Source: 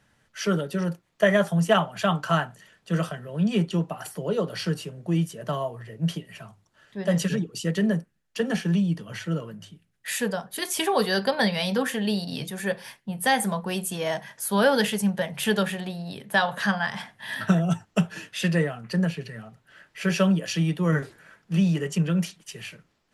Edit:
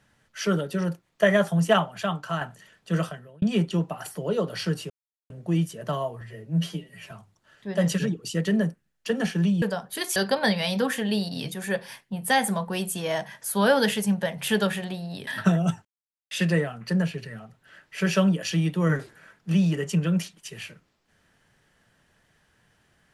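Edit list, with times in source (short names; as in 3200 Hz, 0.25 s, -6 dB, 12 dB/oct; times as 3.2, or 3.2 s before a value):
1.76–2.41 fade out quadratic, to -6.5 dB
3–3.42 fade out linear
4.9 insert silence 0.40 s
5.81–6.41 stretch 1.5×
8.92–10.23 cut
10.77–11.12 cut
16.23–17.3 cut
17.88–18.34 mute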